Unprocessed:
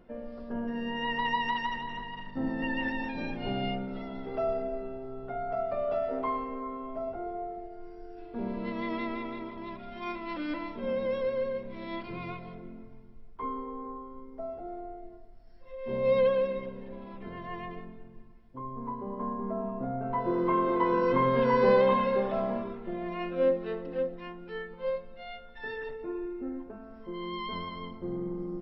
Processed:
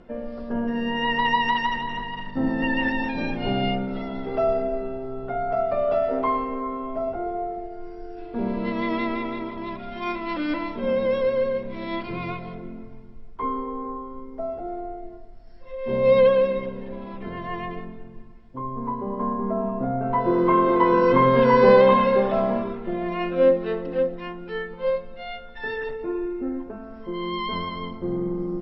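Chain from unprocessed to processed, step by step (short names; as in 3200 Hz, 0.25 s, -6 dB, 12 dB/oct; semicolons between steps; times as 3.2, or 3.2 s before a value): steep low-pass 8100 Hz; gain +8 dB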